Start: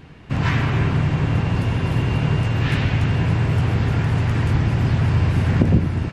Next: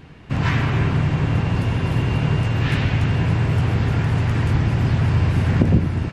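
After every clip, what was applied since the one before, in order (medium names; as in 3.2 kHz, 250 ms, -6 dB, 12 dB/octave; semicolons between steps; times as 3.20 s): no audible change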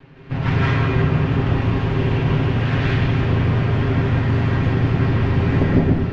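comb filter that takes the minimum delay 7.4 ms; distance through air 190 m; reverberation RT60 0.35 s, pre-delay 150 ms, DRR -3 dB; trim -1 dB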